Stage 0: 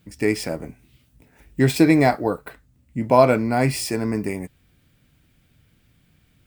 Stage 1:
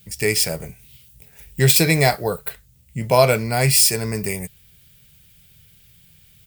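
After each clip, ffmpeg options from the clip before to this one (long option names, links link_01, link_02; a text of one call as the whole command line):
ffmpeg -i in.wav -af "firequalizer=gain_entry='entry(170,0);entry(280,-18);entry(400,-3);entry(1000,-6);entry(3000,6);entry(13000,14)':delay=0.05:min_phase=1,volume=4dB" out.wav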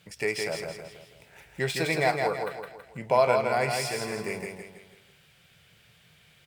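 ffmpeg -i in.wav -filter_complex "[0:a]acompressor=threshold=-42dB:ratio=1.5,bandpass=frequency=970:width_type=q:width=0.66:csg=0,asplit=2[link_01][link_02];[link_02]aecho=0:1:163|326|489|652|815:0.596|0.256|0.11|0.0474|0.0204[link_03];[link_01][link_03]amix=inputs=2:normalize=0,volume=5.5dB" out.wav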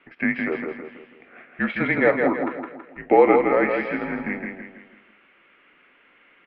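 ffmpeg -i in.wav -af "highpass=frequency=370:width_type=q:width=0.5412,highpass=frequency=370:width_type=q:width=1.307,lowpass=frequency=2700:width_type=q:width=0.5176,lowpass=frequency=2700:width_type=q:width=0.7071,lowpass=frequency=2700:width_type=q:width=1.932,afreqshift=-180,volume=7dB" out.wav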